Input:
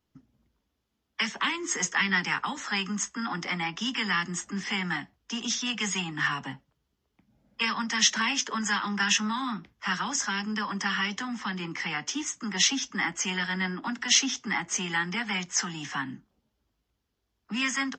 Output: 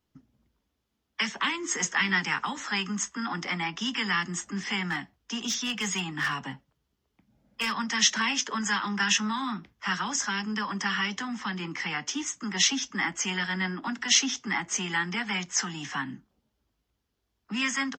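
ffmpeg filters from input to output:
-filter_complex "[0:a]asplit=2[a][b];[b]afade=t=in:st=1.22:d=0.01,afade=t=out:st=1.68:d=0.01,aecho=0:1:570|1140|1710:0.177828|0.044457|0.0111142[c];[a][c]amix=inputs=2:normalize=0,asettb=1/sr,asplit=3[d][e][f];[d]atrim=end=4.854[g];[e]atrim=start=4.85:end=7.75,asetpts=PTS-STARTPTS,afade=t=in:d=0.004:c=qsin,afade=t=out:st=2.896:d=0.004:c=qsin,asoftclip=type=hard:threshold=-23dB[h];[f]atrim=start=7.746[i];[g][h]acrossfade=d=0.004:c1=hsin:c2=qsin[j];[j][i]acrossfade=d=0.004:c1=qsin:c2=hsin"

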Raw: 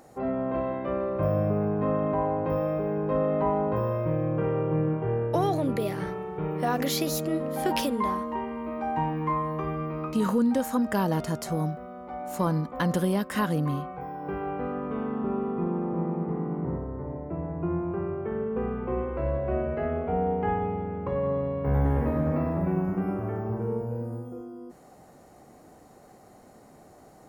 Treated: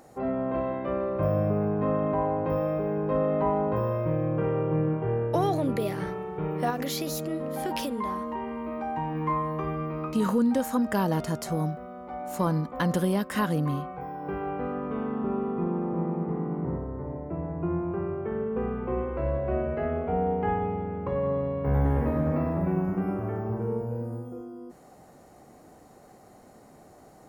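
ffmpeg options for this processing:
-filter_complex "[0:a]asettb=1/sr,asplit=3[a][b][c];[a]atrim=end=6.704[d];[b]atrim=start=6.7:end=9.15,asetpts=PTS-STARTPTS,afade=t=in:d=0.004:c=qsin,afade=t=out:st=2.446:d=0.004:c=qsin,acompressor=threshold=-29dB:ratio=2:attack=3.2:release=140:knee=1:detection=peak[e];[c]atrim=start=9.146[f];[d][e]acrossfade=d=0.004:c1=hsin:c2=qsin[g];[g][f]acrossfade=d=0.004:c1=qsin:c2=hsin"

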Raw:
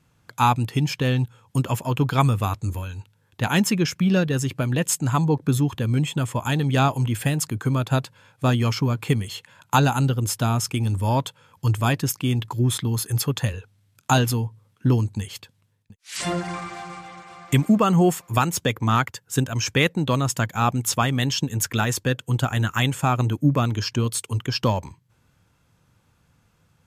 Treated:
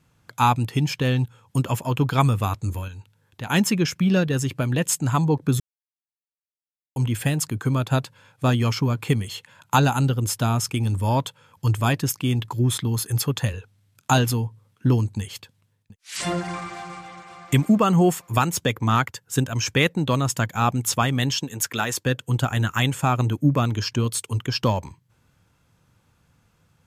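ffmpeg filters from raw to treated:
-filter_complex "[0:a]asettb=1/sr,asplit=3[a][b][c];[a]atrim=end=2.884[d];[b]atrim=start=2.88:end=3.5,asetpts=PTS-STARTPTS,afade=t=in:d=0.004:c=qsin,afade=t=out:st=0.616:d=0.004:c=qsin,acompressor=threshold=-43dB:ratio=1.5:attack=3.2:release=140:knee=1:detection=peak[e];[c]atrim=start=3.496[f];[d][e]acrossfade=d=0.004:c1=hsin:c2=qsin[g];[g][f]acrossfade=d=0.004:c1=qsin:c2=hsin,asettb=1/sr,asplit=3[h][i][j];[h]atrim=end=21.384[k];[i]atrim=start=21.38:end=22.06,asetpts=PTS-STARTPTS,afade=t=in:d=0.004:c=qsin,afade=t=out:st=0.676:d=0.004:c=qsin,highpass=f=330:p=1[l];[j]atrim=start=22.056[m];[k][l]acrossfade=d=0.004:c1=hsin:c2=qsin[n];[n][m]acrossfade=d=0.004:c1=qsin:c2=hsin,asplit=3[o][p][q];[o]atrim=end=5.6,asetpts=PTS-STARTPTS,afade=t=out:st=5.596:d=0.004:c=hsin[r];[p]atrim=start=5.6:end=6.96,asetpts=PTS-STARTPTS,volume=0[s];[q]atrim=start=6.96,asetpts=PTS-STARTPTS,afade=t=in:d=0.004:c=hsin[t];[r][s][t]concat=n=3:v=0:a=1"

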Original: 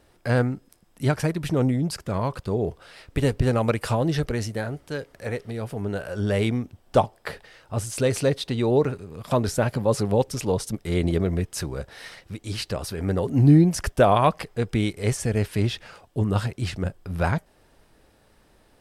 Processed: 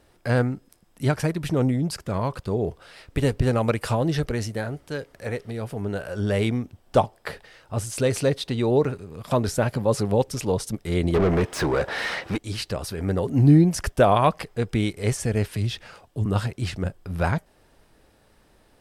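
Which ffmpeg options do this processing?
-filter_complex "[0:a]asettb=1/sr,asplit=3[a][b][c];[a]atrim=end=11.144[d];[b]atrim=start=11.14:end=12.38,asetpts=PTS-STARTPTS,afade=t=in:d=0.004:c=qsin,afade=t=out:st=1.236:d=0.004:c=qsin,asplit=2[e][f];[f]highpass=f=720:p=1,volume=30dB,asoftclip=type=tanh:threshold=-12.5dB[g];[e][g]amix=inputs=2:normalize=0,lowpass=f=1.3k:p=1,volume=-6dB[h];[c]atrim=start=12.376[i];[d][h]acrossfade=d=0.004:c1=hsin:c2=qsin[j];[j][i]acrossfade=d=0.004:c1=qsin:c2=hsin,asettb=1/sr,asplit=3[k][l][m];[k]atrim=end=15.514[n];[l]atrim=start=15.51:end=16.26,asetpts=PTS-STARTPTS,afade=t=in:d=0.004:c=qsin,afade=t=out:st=0.746:d=0.004:c=qsin,acrossover=split=180|3000[o][p][q];[p]acompressor=threshold=-34dB:ratio=6:attack=3.2:release=140:knee=2.83:detection=peak[r];[o][r][q]amix=inputs=3:normalize=0[s];[m]atrim=start=16.256[t];[n][s]acrossfade=d=0.004:c1=hsin:c2=qsin[u];[u][t]acrossfade=d=0.004:c1=qsin:c2=hsin"

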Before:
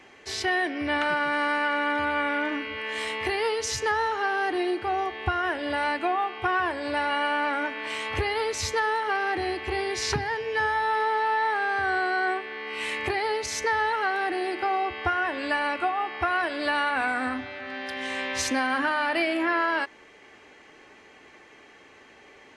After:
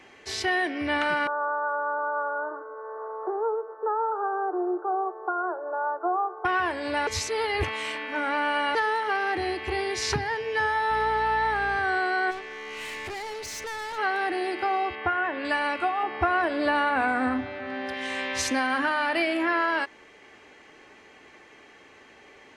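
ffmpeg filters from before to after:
-filter_complex "[0:a]asettb=1/sr,asplit=3[a][b][c];[a]atrim=end=1.274[d];[b]atrim=start=1.27:end=6.45,asetpts=PTS-STARTPTS,afade=t=in:d=0.004:c=qsin,afade=t=out:st=5.176:d=0.004:c=qsin,asuperpass=centerf=700:order=20:qfactor=0.63[e];[c]atrim=start=6.446[f];[d][e]acrossfade=d=0.004:c1=hsin:c2=qsin[g];[g][f]acrossfade=d=0.004:c1=qsin:c2=hsin,asettb=1/sr,asplit=3[h][i][j];[h]atrim=end=10.904[k];[i]atrim=start=10.9:end=11.77,asetpts=PTS-STARTPTS,afade=t=in:d=0.004:c=qsin,afade=t=out:st=0.866:d=0.004:c=qsin,aeval=exprs='val(0)+0.00891*(sin(2*PI*60*n/s)+sin(2*PI*2*60*n/s)/2+sin(2*PI*3*60*n/s)/3+sin(2*PI*4*60*n/s)/4+sin(2*PI*5*60*n/s)/5)':c=same[l];[j]atrim=start=11.766[m];[k][l]acrossfade=d=0.004:c1=hsin:c2=qsin[n];[n][m]acrossfade=d=0.004:c1=qsin:c2=hsin,asplit=3[o][p][q];[o]afade=t=out:st=12.3:d=0.02[r];[p]aeval=exprs='(tanh(44.7*val(0)+0.1)-tanh(0.1))/44.7':c=same,afade=t=in:st=12.3:d=0.02,afade=t=out:st=13.97:d=0.02[s];[q]afade=t=in:st=13.97:d=0.02[t];[r][s][t]amix=inputs=3:normalize=0,asettb=1/sr,asplit=3[u][v][w];[u]atrim=end=14.954[x];[v]atrim=start=14.95:end=15.45,asetpts=PTS-STARTPTS,afade=t=in:d=0.004:c=qsin,afade=t=out:st=0.496:d=0.004:c=qsin,highpass=100,lowpass=2.6k[y];[w]atrim=start=15.446[z];[x][y]acrossfade=d=0.004:c1=hsin:c2=qsin[aa];[aa][z]acrossfade=d=0.004:c1=qsin:c2=hsin,asettb=1/sr,asplit=3[ab][ac][ad];[ab]atrim=end=16.034[ae];[ac]atrim=start=16.03:end=17.94,asetpts=PTS-STARTPTS,afade=t=in:d=0.004:c=qsin,afade=t=out:st=1.906:d=0.004:c=qsin,tiltshelf=f=1.5k:g=5.5[af];[ad]atrim=start=17.936[ag];[ae][af]acrossfade=d=0.004:c1=hsin:c2=qsin[ah];[ah][ag]acrossfade=d=0.004:c1=qsin:c2=hsin,asplit=3[ai][aj][ak];[ai]atrim=end=7.072[al];[aj]atrim=start=7.068:end=8.752,asetpts=PTS-STARTPTS,areverse[am];[ak]atrim=start=8.748[an];[al][am]acrossfade=d=0.004:c1=hsin:c2=hsin[ao];[ao][an]acrossfade=d=0.004:c1=hsin:c2=hsin"

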